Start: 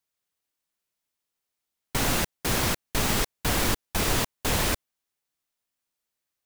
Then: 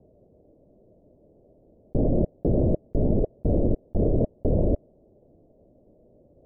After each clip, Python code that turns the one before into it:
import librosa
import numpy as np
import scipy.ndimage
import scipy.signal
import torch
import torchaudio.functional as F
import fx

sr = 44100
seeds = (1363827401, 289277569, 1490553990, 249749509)

y = scipy.signal.sosfilt(scipy.signal.cheby1(5, 1.0, 620.0, 'lowpass', fs=sr, output='sos'), x)
y = fx.env_flatten(y, sr, amount_pct=100)
y = F.gain(torch.from_numpy(y), 3.0).numpy()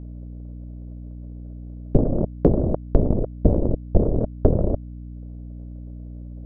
y = fx.transient(x, sr, attack_db=12, sustain_db=-9)
y = fx.add_hum(y, sr, base_hz=60, snr_db=13)
y = F.gain(torch.from_numpy(y), -1.5).numpy()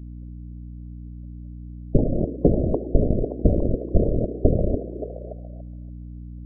y = fx.spec_gate(x, sr, threshold_db=-25, keep='strong')
y = fx.echo_stepped(y, sr, ms=286, hz=350.0, octaves=0.7, feedback_pct=70, wet_db=-6.0)
y = F.gain(torch.from_numpy(y), -1.0).numpy()